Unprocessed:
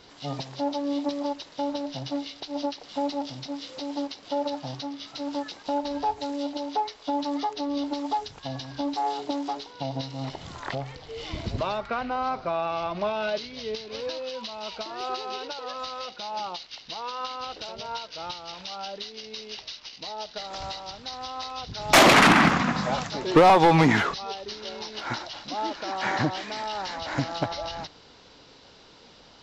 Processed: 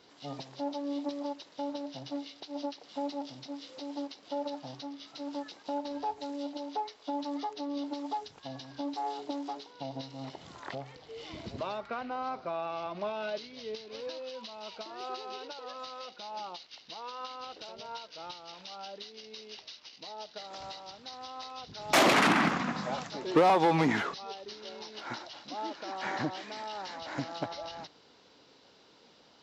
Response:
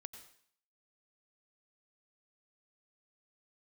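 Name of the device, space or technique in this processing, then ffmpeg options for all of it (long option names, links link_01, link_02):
filter by subtraction: -filter_complex "[0:a]asplit=2[link_01][link_02];[link_02]lowpass=280,volume=-1[link_03];[link_01][link_03]amix=inputs=2:normalize=0,volume=-8.5dB"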